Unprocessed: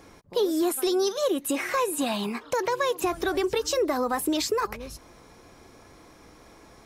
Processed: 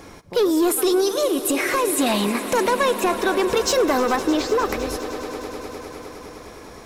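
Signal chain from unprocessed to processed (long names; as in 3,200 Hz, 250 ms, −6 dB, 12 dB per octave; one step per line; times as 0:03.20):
0:01.00–0:01.85: downward compressor, threshold −25 dBFS, peak gain reduction 5 dB
0:02.70–0:03.47: bass and treble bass −11 dB, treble −5 dB
soft clipping −22.5 dBFS, distortion −15 dB
0:04.16–0:04.66: head-to-tape spacing loss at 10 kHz 21 dB
echo that builds up and dies away 102 ms, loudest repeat 5, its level −17 dB
level +9 dB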